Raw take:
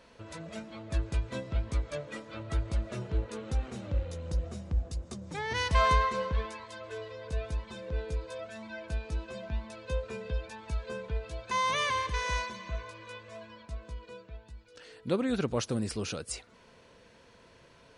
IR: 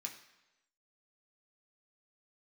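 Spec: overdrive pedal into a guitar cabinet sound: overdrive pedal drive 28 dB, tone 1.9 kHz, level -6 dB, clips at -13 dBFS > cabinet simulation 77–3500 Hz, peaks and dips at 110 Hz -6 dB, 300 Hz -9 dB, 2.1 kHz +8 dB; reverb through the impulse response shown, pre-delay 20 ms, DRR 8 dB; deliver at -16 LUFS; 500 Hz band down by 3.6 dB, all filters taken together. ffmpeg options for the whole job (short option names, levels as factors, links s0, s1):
-filter_complex "[0:a]equalizer=f=500:t=o:g=-3.5,asplit=2[s0][s1];[1:a]atrim=start_sample=2205,adelay=20[s2];[s1][s2]afir=irnorm=-1:irlink=0,volume=0.531[s3];[s0][s3]amix=inputs=2:normalize=0,asplit=2[s4][s5];[s5]highpass=f=720:p=1,volume=25.1,asoftclip=type=tanh:threshold=0.224[s6];[s4][s6]amix=inputs=2:normalize=0,lowpass=f=1900:p=1,volume=0.501,highpass=77,equalizer=f=110:t=q:w=4:g=-6,equalizer=f=300:t=q:w=4:g=-9,equalizer=f=2100:t=q:w=4:g=8,lowpass=f=3500:w=0.5412,lowpass=f=3500:w=1.3066,volume=2.99"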